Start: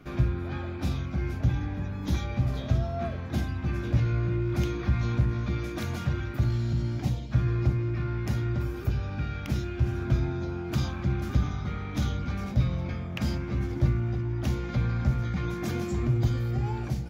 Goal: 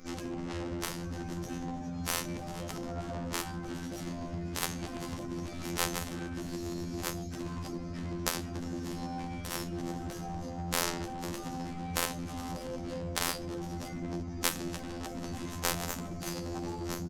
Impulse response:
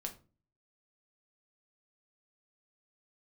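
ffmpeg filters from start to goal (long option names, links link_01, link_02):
-filter_complex "[0:a]aresample=16000,aresample=44100,asplit=2[link_01][link_02];[link_02]aeval=exprs='clip(val(0),-1,0.0794)':channel_layout=same,volume=-11.5dB[link_03];[link_01][link_03]amix=inputs=2:normalize=0,asplit=2[link_04][link_05];[link_05]adelay=141,lowpass=frequency=1600:poles=1,volume=-8.5dB,asplit=2[link_06][link_07];[link_07]adelay=141,lowpass=frequency=1600:poles=1,volume=0.48,asplit=2[link_08][link_09];[link_09]adelay=141,lowpass=frequency=1600:poles=1,volume=0.48,asplit=2[link_10][link_11];[link_11]adelay=141,lowpass=frequency=1600:poles=1,volume=0.48,asplit=2[link_12][link_13];[link_13]adelay=141,lowpass=frequency=1600:poles=1,volume=0.48[link_14];[link_04][link_06][link_08][link_10][link_12][link_14]amix=inputs=6:normalize=0[link_15];[1:a]atrim=start_sample=2205[link_16];[link_15][link_16]afir=irnorm=-1:irlink=0,aexciter=amount=5.2:drive=7.6:freq=4800,afftfilt=real='hypot(re,im)*cos(PI*b)':imag='0':win_size=2048:overlap=0.75,aecho=1:1:3.9:0.73,afftfilt=real='re*lt(hypot(re,im),0.178)':imag='im*lt(hypot(re,im),0.178)':win_size=1024:overlap=0.75,aeval=exprs='0.237*(cos(1*acos(clip(val(0)/0.237,-1,1)))-cos(1*PI/2))+0.0841*(cos(2*acos(clip(val(0)/0.237,-1,1)))-cos(2*PI/2))+0.106*(cos(3*acos(clip(val(0)/0.237,-1,1)))-cos(3*PI/2))+0.00266*(cos(4*acos(clip(val(0)/0.237,-1,1)))-cos(4*PI/2))':channel_layout=same,alimiter=level_in=11dB:limit=-1dB:release=50:level=0:latency=1,adynamicequalizer=threshold=0.00355:dfrequency=1600:dqfactor=0.7:tfrequency=1600:tqfactor=0.7:attack=5:release=100:ratio=0.375:range=3.5:mode=cutabove:tftype=highshelf"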